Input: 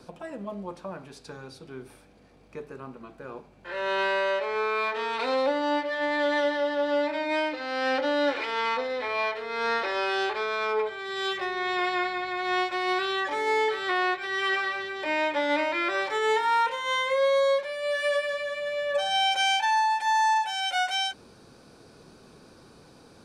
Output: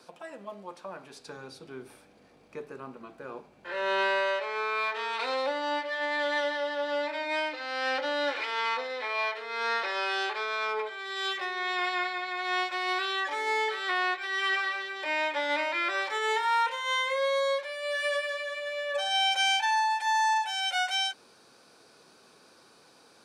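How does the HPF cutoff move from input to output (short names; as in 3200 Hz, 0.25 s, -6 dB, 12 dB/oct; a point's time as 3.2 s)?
HPF 6 dB/oct
0.76 s 820 Hz
1.42 s 220 Hz
3.96 s 220 Hz
4.45 s 880 Hz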